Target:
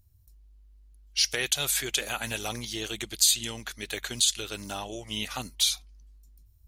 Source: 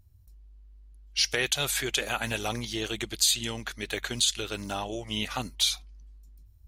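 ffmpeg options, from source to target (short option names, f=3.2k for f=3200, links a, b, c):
-af "highshelf=f=4.4k:g=8.5,volume=-3.5dB"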